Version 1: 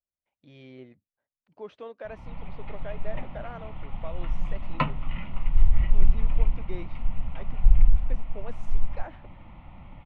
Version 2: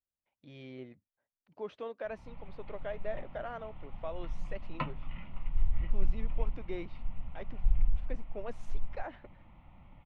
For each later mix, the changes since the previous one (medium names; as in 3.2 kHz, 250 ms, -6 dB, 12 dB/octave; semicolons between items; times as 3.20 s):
background -10.0 dB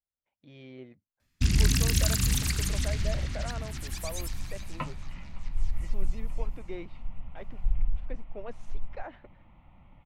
first sound: unmuted